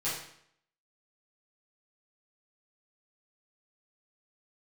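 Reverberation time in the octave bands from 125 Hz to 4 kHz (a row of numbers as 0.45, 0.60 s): 0.65, 0.70, 0.65, 0.65, 0.65, 0.60 s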